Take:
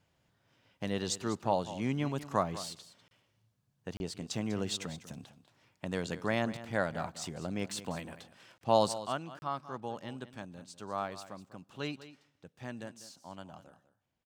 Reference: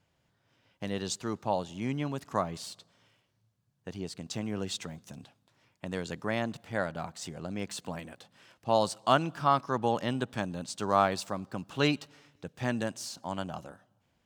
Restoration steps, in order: interpolate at 3.08/3.97/8.58/9.39 s, 31 ms; inverse comb 197 ms -14.5 dB; gain correction +11.5 dB, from 9.00 s

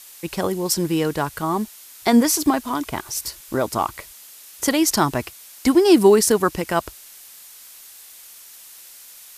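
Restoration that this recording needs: noise reduction 21 dB, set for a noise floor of -44 dBFS

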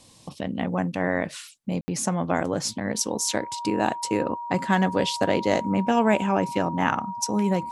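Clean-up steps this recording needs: band-stop 950 Hz, Q 30; room tone fill 1.81–1.88 s

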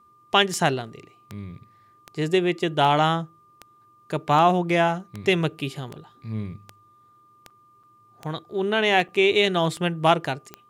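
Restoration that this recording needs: de-click; band-stop 1.2 kHz, Q 30; interpolate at 7.50/7.83/9.08 s, 5.2 ms

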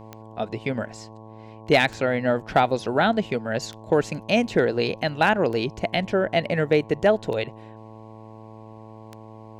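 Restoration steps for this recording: clip repair -9 dBFS; de-click; de-hum 109.9 Hz, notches 10

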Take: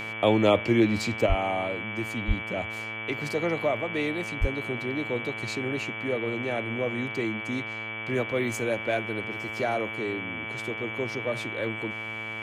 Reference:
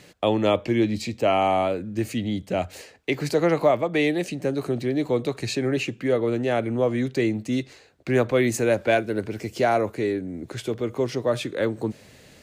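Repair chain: de-hum 110 Hz, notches 31; band-stop 2.3 kHz, Q 30; 1.26 s: gain correction +7.5 dB; 1.28–1.40 s: high-pass 140 Hz 24 dB/octave; 2.27–2.39 s: high-pass 140 Hz 24 dB/octave; 4.40–4.52 s: high-pass 140 Hz 24 dB/octave

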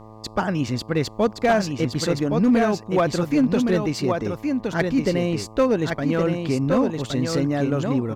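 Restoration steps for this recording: clip repair -12 dBFS; de-hum 109.3 Hz, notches 11; inverse comb 1118 ms -5 dB

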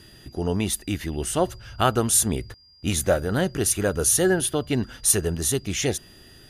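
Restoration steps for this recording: band-stop 4.8 kHz, Q 30

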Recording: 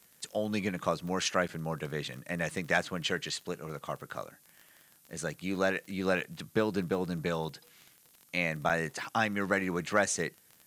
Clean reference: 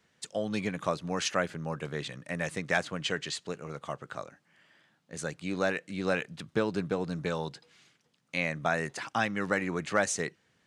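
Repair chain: de-click; interpolate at 1.48/8.69 s, 7.1 ms; noise print and reduce 7 dB

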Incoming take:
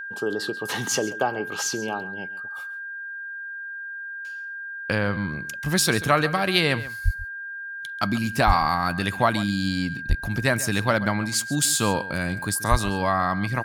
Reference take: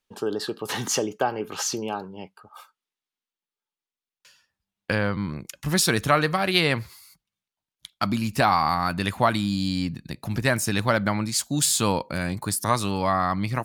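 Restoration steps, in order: band-stop 1.6 kHz, Q 30; de-plosive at 7.04/8.46/10.08/12.70 s; inverse comb 136 ms -16.5 dB

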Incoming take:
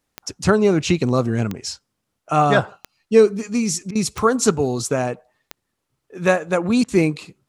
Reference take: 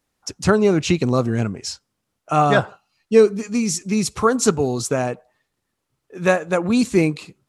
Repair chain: de-click; interpolate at 3.91/6.84 s, 42 ms

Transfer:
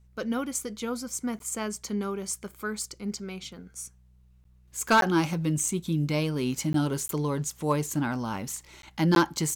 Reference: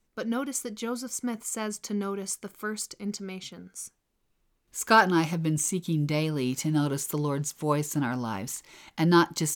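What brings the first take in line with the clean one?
clip repair -14 dBFS; de-hum 61.9 Hz, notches 3; interpolate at 1.39/4.44/5.01/6.73/7.08/8.82/9.15 s, 12 ms

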